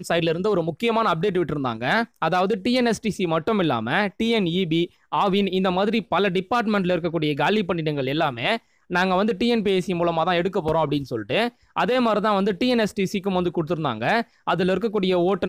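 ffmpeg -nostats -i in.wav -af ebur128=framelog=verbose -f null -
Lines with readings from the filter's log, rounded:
Integrated loudness:
  I:         -22.4 LUFS
  Threshold: -32.4 LUFS
Loudness range:
  LRA:         0.6 LU
  Threshold: -42.4 LUFS
  LRA low:   -22.7 LUFS
  LRA high:  -22.1 LUFS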